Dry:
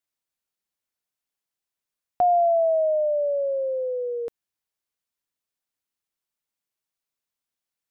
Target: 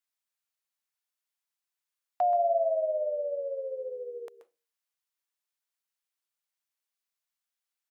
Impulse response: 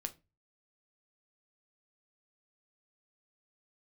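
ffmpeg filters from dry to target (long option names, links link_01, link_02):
-filter_complex "[0:a]highpass=810,asplit=2[link_01][link_02];[link_02]asetrate=37084,aresample=44100,atempo=1.18921,volume=-13dB[link_03];[link_01][link_03]amix=inputs=2:normalize=0,asplit=2[link_04][link_05];[1:a]atrim=start_sample=2205,adelay=130[link_06];[link_05][link_06]afir=irnorm=-1:irlink=0,volume=-8.5dB[link_07];[link_04][link_07]amix=inputs=2:normalize=0,volume=-2dB"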